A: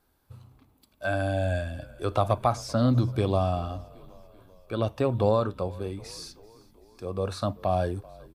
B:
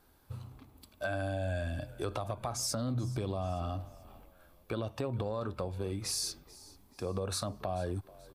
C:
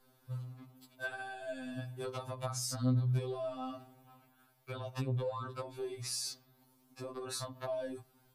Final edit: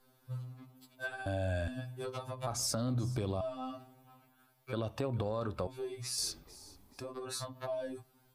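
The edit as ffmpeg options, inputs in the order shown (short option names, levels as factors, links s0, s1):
-filter_complex "[1:a]asplit=4[s0][s1][s2][s3];[2:a]asplit=5[s4][s5][s6][s7][s8];[s4]atrim=end=1.262[s9];[s0]atrim=start=1.258:end=1.682[s10];[s5]atrim=start=1.678:end=2.472[s11];[s1]atrim=start=2.468:end=3.412[s12];[s6]atrim=start=3.408:end=4.732[s13];[s2]atrim=start=4.728:end=5.672[s14];[s7]atrim=start=5.668:end=6.182[s15];[s3]atrim=start=6.178:end=7.012[s16];[s8]atrim=start=7.008[s17];[s9][s10]acrossfade=d=0.004:c1=hsin:c2=hsin[s18];[s18][s11]acrossfade=d=0.004:c1=hsin:c2=hsin[s19];[s19][s12]acrossfade=d=0.004:c1=hsin:c2=hsin[s20];[s20][s13]acrossfade=d=0.004:c1=hsin:c2=hsin[s21];[s21][s14]acrossfade=d=0.004:c1=hsin:c2=hsin[s22];[s22][s15]acrossfade=d=0.004:c1=hsin:c2=hsin[s23];[s23][s16]acrossfade=d=0.004:c1=hsin:c2=hsin[s24];[s24][s17]acrossfade=d=0.004:c1=hsin:c2=hsin"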